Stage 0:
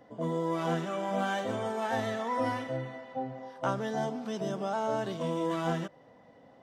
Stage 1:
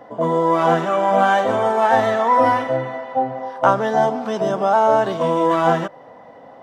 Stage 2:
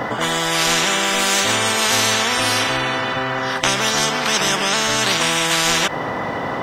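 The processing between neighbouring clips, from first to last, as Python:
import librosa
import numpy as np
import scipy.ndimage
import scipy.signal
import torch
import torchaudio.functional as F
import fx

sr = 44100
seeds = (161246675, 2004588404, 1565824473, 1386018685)

y1 = fx.peak_eq(x, sr, hz=900.0, db=11.5, octaves=2.4)
y1 = y1 * 10.0 ** (6.5 / 20.0)
y2 = fx.spectral_comp(y1, sr, ratio=10.0)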